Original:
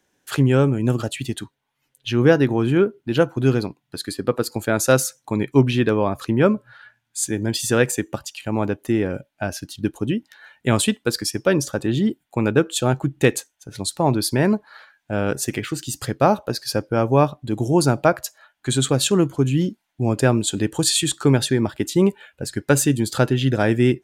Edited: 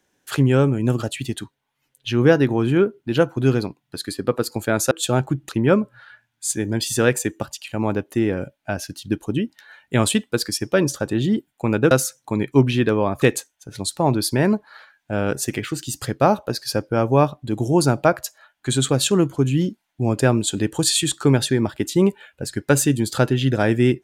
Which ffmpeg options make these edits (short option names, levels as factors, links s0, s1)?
-filter_complex "[0:a]asplit=5[s0][s1][s2][s3][s4];[s0]atrim=end=4.912[s5];[s1]atrim=start=12.638:end=13.222[s6];[s2]atrim=start=6.218:end=12.642[s7];[s3]atrim=start=4.908:end=6.222[s8];[s4]atrim=start=13.218[s9];[s5][s6]acrossfade=d=0.004:c1=hsin:c2=hsin[s10];[s10][s7]acrossfade=d=0.004:c1=hsin:c2=hsin[s11];[s11][s8]acrossfade=d=0.004:c1=hsin:c2=hsin[s12];[s12][s9]acrossfade=d=0.004:c1=hsin:c2=hsin"